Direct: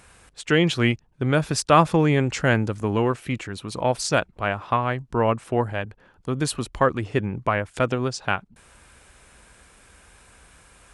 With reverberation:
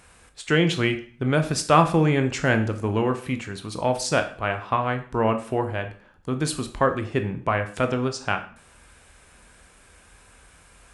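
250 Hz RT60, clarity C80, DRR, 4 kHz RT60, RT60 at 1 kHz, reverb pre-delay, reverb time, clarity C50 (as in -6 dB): 0.45 s, 16.0 dB, 6.5 dB, 0.45 s, 0.45 s, 7 ms, 0.45 s, 12.0 dB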